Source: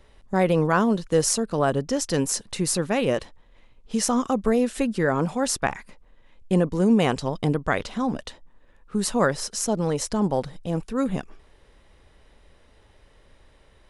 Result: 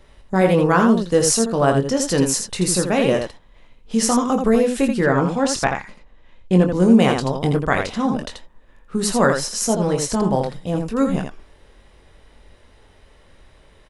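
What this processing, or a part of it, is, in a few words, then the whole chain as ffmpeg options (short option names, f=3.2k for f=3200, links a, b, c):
slapback doubling: -filter_complex "[0:a]asplit=3[a][b][c];[b]adelay=22,volume=-6.5dB[d];[c]adelay=83,volume=-5.5dB[e];[a][d][e]amix=inputs=3:normalize=0,asettb=1/sr,asplit=3[f][g][h];[f]atrim=end=5.044[i];[g]atrim=start=5.04:end=6.74,asetpts=PTS-STARTPTS,afade=t=in:d=0.004:c=qsin,afade=t=out:st=1.696:d=0.004:c=qsin,lowpass=7k[j];[h]atrim=start=6.736[k];[i][j]acrossfade=d=0.004:c1=hsin:c2=qsin[l];[l][k]acrossfade=d=0.004:c1=qsin:c2=hsin,volume=3.5dB"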